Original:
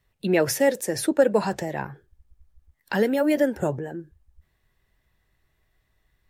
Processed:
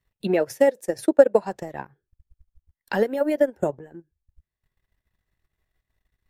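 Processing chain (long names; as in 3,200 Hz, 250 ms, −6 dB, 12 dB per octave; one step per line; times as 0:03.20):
transient designer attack +8 dB, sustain −12 dB
dynamic equaliser 620 Hz, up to +7 dB, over −28 dBFS, Q 0.77
level −8 dB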